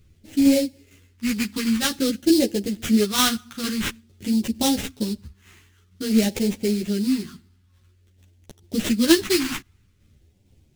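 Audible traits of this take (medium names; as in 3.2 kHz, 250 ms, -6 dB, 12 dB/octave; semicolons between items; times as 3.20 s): aliases and images of a low sample rate 4.7 kHz, jitter 20%; phasing stages 2, 0.5 Hz, lowest notch 550–1200 Hz; tremolo saw down 2.2 Hz, depth 45%; a shimmering, thickened sound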